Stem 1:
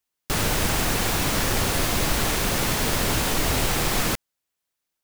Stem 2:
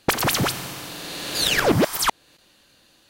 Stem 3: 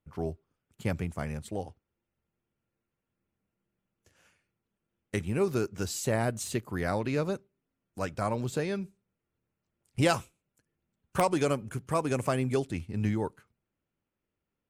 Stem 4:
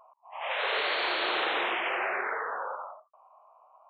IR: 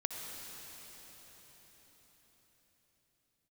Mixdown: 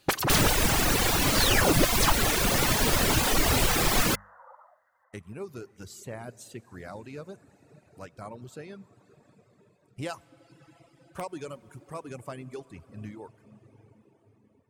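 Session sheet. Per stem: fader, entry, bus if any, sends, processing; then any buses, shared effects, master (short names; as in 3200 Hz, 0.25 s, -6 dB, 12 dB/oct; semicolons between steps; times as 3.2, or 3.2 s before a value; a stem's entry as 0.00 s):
+2.5 dB, 0.00 s, no send, notches 50/100/150/200 Hz
-4.0 dB, 0.00 s, no send, notch comb 230 Hz
-14.0 dB, 0.00 s, send -4 dB, dry
-10.5 dB, 1.80 s, send -13 dB, FFT band-pass 480–2100 Hz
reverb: on, RT60 5.2 s, pre-delay 56 ms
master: reverb removal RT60 1.2 s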